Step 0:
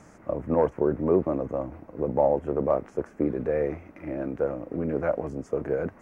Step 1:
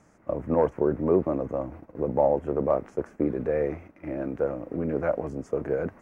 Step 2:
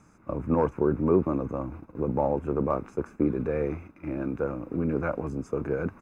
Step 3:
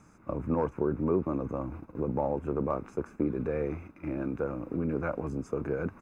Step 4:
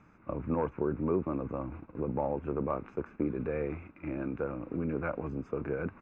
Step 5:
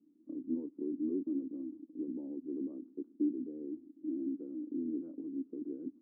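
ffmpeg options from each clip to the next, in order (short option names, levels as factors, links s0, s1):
-af "agate=range=0.398:threshold=0.00708:ratio=16:detection=peak"
-af "aecho=1:1:0.8:0.54"
-af "acompressor=threshold=0.0251:ratio=1.5"
-af "lowpass=f=2700:t=q:w=1.5,volume=0.75"
-af "asuperpass=centerf=290:order=4:qfactor=3.6,volume=1.26"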